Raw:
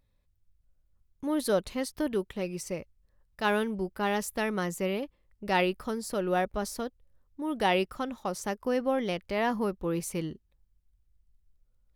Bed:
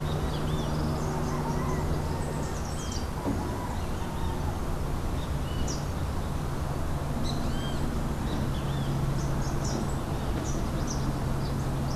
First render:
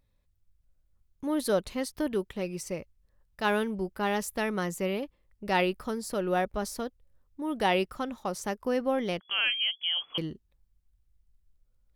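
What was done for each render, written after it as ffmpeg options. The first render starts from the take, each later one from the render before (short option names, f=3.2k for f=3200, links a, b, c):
-filter_complex "[0:a]asettb=1/sr,asplit=3[a][b][c];[a]atrim=end=9.204[d];[b]atrim=start=9.2:end=10.18,asetpts=PTS-STARTPTS,afade=t=in:d=0.004:c=qsin,afade=t=out:st=0.976:d=0.004:c=qsin,lowpass=f=2.9k:t=q:w=0.5098,lowpass=f=2.9k:t=q:w=0.6013,lowpass=f=2.9k:t=q:w=0.9,lowpass=f=2.9k:t=q:w=2.563,afreqshift=-3400[e];[c]atrim=start=10.176[f];[d][e]acrossfade=d=0.004:c1=hsin:c2=qsin[g];[g][f]acrossfade=d=0.004:c1=qsin:c2=hsin"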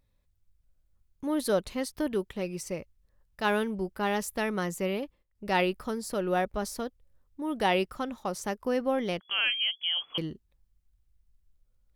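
-filter_complex "[0:a]asplit=3[a][b][c];[a]atrim=end=5.23,asetpts=PTS-STARTPTS,afade=t=out:st=4.97:d=0.26:c=log:silence=0.223872[d];[b]atrim=start=5.23:end=5.35,asetpts=PTS-STARTPTS,volume=-13dB[e];[c]atrim=start=5.35,asetpts=PTS-STARTPTS,afade=t=in:d=0.26:c=log:silence=0.223872[f];[d][e][f]concat=n=3:v=0:a=1"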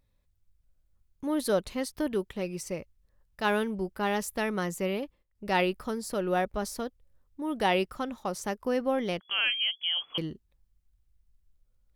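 -af anull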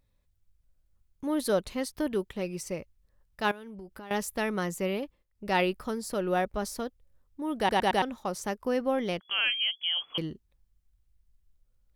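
-filter_complex "[0:a]asettb=1/sr,asplit=3[a][b][c];[a]atrim=end=3.514[d];[b]atrim=start=3.51:end=4.11,asetpts=PTS-STARTPTS,afade=t=in:d=0.004:c=qsin,afade=t=out:st=0.596:d=0.004:c=qsin,acompressor=threshold=-40dB:ratio=10:attack=3.2:release=140:knee=1:detection=peak[e];[c]atrim=start=4.106[f];[d][e]acrossfade=d=0.004:c1=hsin:c2=qsin[g];[g][f]acrossfade=d=0.004:c1=qsin:c2=hsin,asplit=5[h][i][j][k][l];[h]atrim=end=7.692[m];[i]atrim=start=7.578:end=7.692[n];[j]atrim=start=7.578:end=7.692[o];[k]atrim=start=7.578:end=7.692[p];[l]atrim=start=8.018[q];[m][n]acrossfade=d=0.004:c1=hsin:c2=hsin[r];[r][o]acrossfade=d=0.004:c1=hsin:c2=hsin[s];[s][p]acrossfade=d=0.004:c1=hsin:c2=hsin[t];[t][q]acrossfade=d=0.004:c1=hsin:c2=hsin"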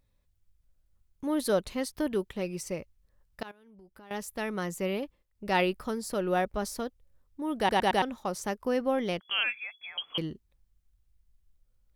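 -filter_complex "[0:a]asettb=1/sr,asplit=3[a][b][c];[a]atrim=end=9.434[d];[b]atrim=start=9.43:end=9.98,asetpts=PTS-STARTPTS,afade=t=in:d=0.004:c=qsin,afade=t=out:st=0.546:d=0.004:c=qsin,asuperstop=centerf=3000:order=20:qfactor=4.4[e];[c]atrim=start=9.976[f];[d][e]acrossfade=d=0.004:c1=hsin:c2=qsin[g];[g][f]acrossfade=d=0.004:c1=qsin:c2=hsin,asplit=2[h][i];[h]atrim=end=3.43,asetpts=PTS-STARTPTS,afade=t=out:st=3.426:d=0.004:c=hsin:silence=0.0841395[j];[i]atrim=start=3.43,asetpts=PTS-STARTPTS,afade=t=in:d=1.59:silence=0.0841395[k];[j][k]concat=n=2:v=0:a=1"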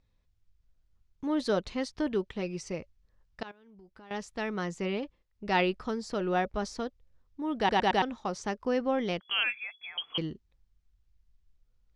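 -af "lowpass=f=6.4k:w=0.5412,lowpass=f=6.4k:w=1.3066,bandreject=f=570:w=12"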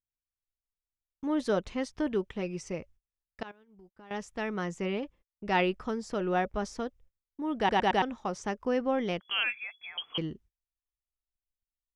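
-af "agate=range=-30dB:threshold=-55dB:ratio=16:detection=peak,equalizer=f=4.3k:t=o:w=0.43:g=-8"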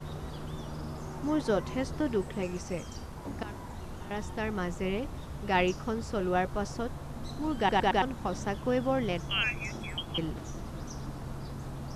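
-filter_complex "[1:a]volume=-10dB[a];[0:a][a]amix=inputs=2:normalize=0"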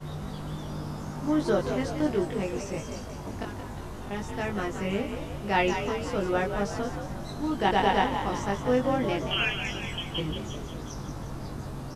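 -filter_complex "[0:a]asplit=2[a][b];[b]adelay=20,volume=-2dB[c];[a][c]amix=inputs=2:normalize=0,asplit=8[d][e][f][g][h][i][j][k];[e]adelay=178,afreqshift=50,volume=-8dB[l];[f]adelay=356,afreqshift=100,volume=-13dB[m];[g]adelay=534,afreqshift=150,volume=-18.1dB[n];[h]adelay=712,afreqshift=200,volume=-23.1dB[o];[i]adelay=890,afreqshift=250,volume=-28.1dB[p];[j]adelay=1068,afreqshift=300,volume=-33.2dB[q];[k]adelay=1246,afreqshift=350,volume=-38.2dB[r];[d][l][m][n][o][p][q][r]amix=inputs=8:normalize=0"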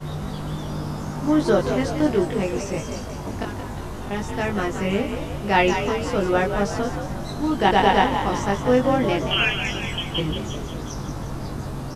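-af "volume=6.5dB"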